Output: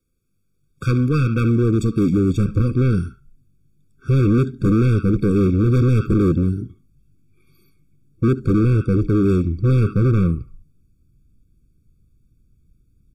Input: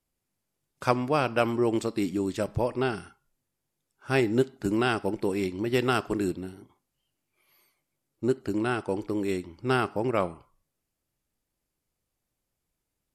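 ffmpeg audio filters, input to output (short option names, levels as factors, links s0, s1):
-filter_complex "[0:a]asubboost=boost=11:cutoff=190,acrossover=split=590|5700[s0][s1][s2];[s0]acontrast=22[s3];[s1]aecho=1:1:72:0.251[s4];[s3][s4][s2]amix=inputs=3:normalize=0,volume=7.94,asoftclip=hard,volume=0.126,afftfilt=real='re*eq(mod(floor(b*sr/1024/540),2),0)':imag='im*eq(mod(floor(b*sr/1024/540),2),0)':win_size=1024:overlap=0.75,volume=1.78"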